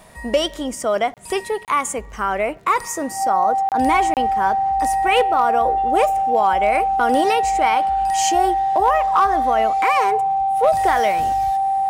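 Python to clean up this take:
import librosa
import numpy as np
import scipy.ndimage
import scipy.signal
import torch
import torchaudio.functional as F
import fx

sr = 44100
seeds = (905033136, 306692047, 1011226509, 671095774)

y = fx.fix_declip(x, sr, threshold_db=-8.0)
y = fx.fix_declick_ar(y, sr, threshold=6.5)
y = fx.notch(y, sr, hz=780.0, q=30.0)
y = fx.fix_interpolate(y, sr, at_s=(1.14, 1.65, 3.69, 4.14), length_ms=28.0)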